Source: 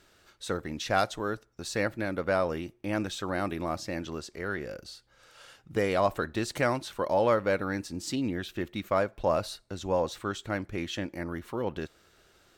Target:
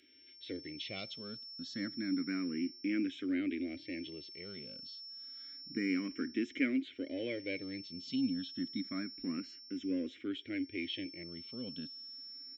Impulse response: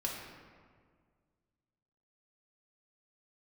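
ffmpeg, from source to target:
-filter_complex "[0:a]aresample=16000,aresample=44100,asplit=2[a][b];[b]asoftclip=type=tanh:threshold=-24.5dB,volume=-10dB[c];[a][c]amix=inputs=2:normalize=0,asplit=3[d][e][f];[d]bandpass=f=270:t=q:w=8,volume=0dB[g];[e]bandpass=f=2.29k:t=q:w=8,volume=-6dB[h];[f]bandpass=f=3.01k:t=q:w=8,volume=-9dB[i];[g][h][i]amix=inputs=3:normalize=0,acontrast=70,aeval=exprs='val(0)+0.00501*sin(2*PI*5400*n/s)':c=same,asplit=2[j][k];[k]afreqshift=0.29[l];[j][l]amix=inputs=2:normalize=1"

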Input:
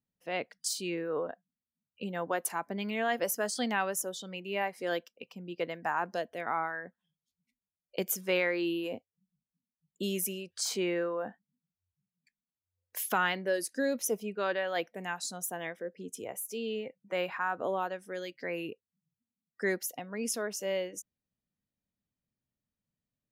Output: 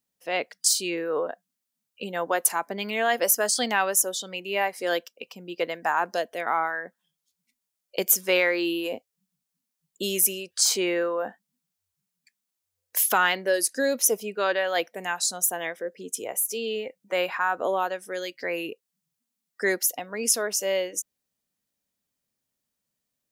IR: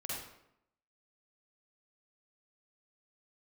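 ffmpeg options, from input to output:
-af "bass=f=250:g=-11,treble=f=4k:g=6,acontrast=90"

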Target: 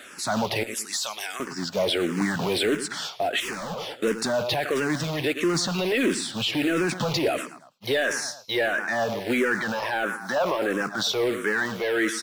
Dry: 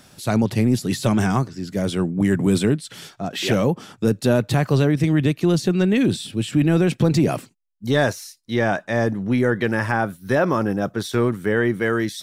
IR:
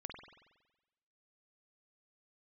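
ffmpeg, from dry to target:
-filter_complex "[0:a]asettb=1/sr,asplit=3[a][b][c];[a]atrim=end=0.634[d];[b]atrim=start=0.63:end=1.4,asetpts=PTS-STARTPTS,afade=t=in:d=0.004:c=qsin,afade=t=out:st=0.766:d=0.004:c=qsin,aderivative[e];[c]atrim=start=1.396[f];[d][e]acrossfade=d=0.004:c1=hsin:c2=qsin[g];[g][f]acrossfade=d=0.004:c1=qsin:c2=hsin,asettb=1/sr,asplit=3[h][i][j];[h]atrim=end=9.814[k];[i]atrim=start=9.81:end=10.81,asetpts=PTS-STARTPTS,afade=t=in:d=0.004:c=qsin,afade=t=out:st=0.996:d=0.004:c=qsin,highpass=170[l];[j]atrim=start=10.806[m];[k][l]acrossfade=d=0.004:c1=hsin:c2=qsin[n];[n][m]acrossfade=d=0.004:c1=qsin:c2=hsin,acrusher=bits=5:mode=log:mix=0:aa=0.000001,aecho=1:1:110|220|330:0.126|0.0466|0.0172,asplit=2[o][p];[p]highpass=f=720:p=1,volume=19dB,asoftclip=type=tanh:threshold=-5dB[q];[o][q]amix=inputs=2:normalize=0,lowpass=f=2.8k:p=1,volume=-6dB,lowshelf=f=250:g=-11,alimiter=limit=-16.5dB:level=0:latency=1:release=18,asettb=1/sr,asplit=3[r][s][t];[r]atrim=end=3.404[u];[s]atrim=start=3.4:end=3.92,asetpts=PTS-STARTPTS,afade=t=in:d=0.004:c=qsin,afade=t=out:st=0.516:d=0.004:c=qsin,asoftclip=type=hard:threshold=-28.5dB[v];[t]atrim=start=3.916[w];[u][v]acrossfade=d=0.004:c1=hsin:c2=qsin[x];[x][w]acrossfade=d=0.004:c1=qsin:c2=hsin,asplit=2[y][z];[z]afreqshift=-1.5[aa];[y][aa]amix=inputs=2:normalize=1,volume=1.5dB"

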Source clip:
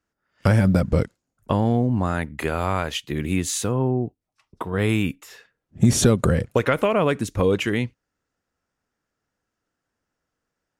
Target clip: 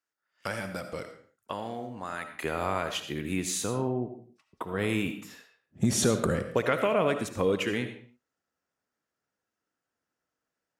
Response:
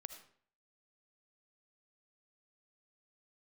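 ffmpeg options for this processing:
-filter_complex "[0:a]asetnsamples=n=441:p=0,asendcmd='2.44 highpass f 200',highpass=f=1.2k:p=1[a];[1:a]atrim=start_sample=2205,afade=t=out:st=0.38:d=0.01,atrim=end_sample=17199[b];[a][b]afir=irnorm=-1:irlink=0"

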